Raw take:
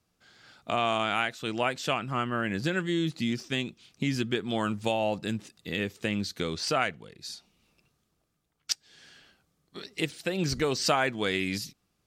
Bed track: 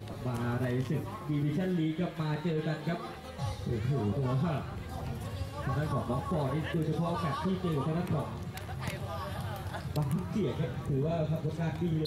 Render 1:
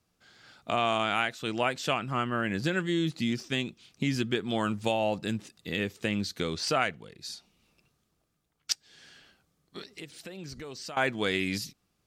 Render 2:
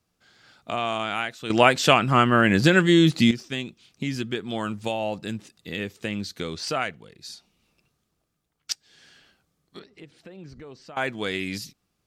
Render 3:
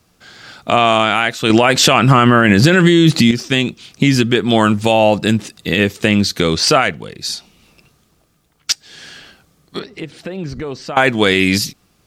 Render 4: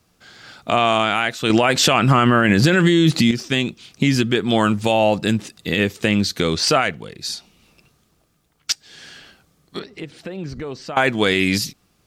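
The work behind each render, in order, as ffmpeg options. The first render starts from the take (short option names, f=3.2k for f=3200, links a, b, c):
-filter_complex "[0:a]asettb=1/sr,asplit=3[a][b][c];[a]atrim=end=9.824[d];[b]atrim=start=9.82:end=10.97,asetpts=PTS-STARTPTS,afade=t=in:d=0.004:c=qsin,afade=t=out:st=1.146:d=0.004:c=qsin,acompressor=threshold=-43dB:ratio=3:attack=3.2:release=140:knee=1:detection=peak[e];[c]atrim=start=10.966[f];[d][e]acrossfade=d=0.004:c1=hsin:c2=qsin[g];[g][f]acrossfade=d=0.004:c1=qsin:c2=hsin"
-filter_complex "[0:a]asettb=1/sr,asplit=3[a][b][c];[a]atrim=end=9.794[d];[b]atrim=start=9.79:end=10.96,asetpts=PTS-STARTPTS,afade=t=in:d=0.004:c=qsin,afade=t=out:st=1.166:d=0.004:c=qsin,lowpass=f=1.4k:p=1[e];[c]atrim=start=10.956[f];[d][e]acrossfade=d=0.004:c1=hsin:c2=qsin[g];[g][f]acrossfade=d=0.004:c1=qsin:c2=hsin,asplit=3[h][i][j];[h]atrim=end=1.502[k];[i]atrim=start=1.498:end=3.312,asetpts=PTS-STARTPTS,volume=11.5dB[l];[j]atrim=start=3.308[m];[k][l]acrossfade=d=0.004:c1=hsin:c2=hsin[n];[n][m]acrossfade=d=0.004:c1=hsin:c2=hsin"
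-filter_complex "[0:a]asplit=2[a][b];[b]acompressor=threshold=-25dB:ratio=6,volume=-1dB[c];[a][c]amix=inputs=2:normalize=0,alimiter=level_in=12dB:limit=-1dB:release=50:level=0:latency=1"
-af "volume=-4.5dB"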